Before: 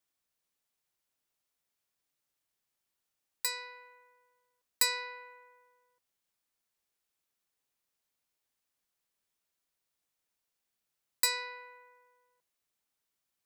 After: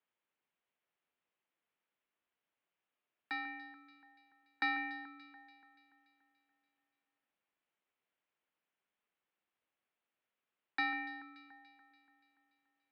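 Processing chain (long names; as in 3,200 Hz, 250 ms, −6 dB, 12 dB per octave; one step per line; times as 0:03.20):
single-sideband voice off tune −220 Hz 400–3,200 Hz
wrong playback speed 24 fps film run at 25 fps
delay that swaps between a low-pass and a high-pass 144 ms, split 2,100 Hz, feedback 72%, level −11.5 dB
level +1 dB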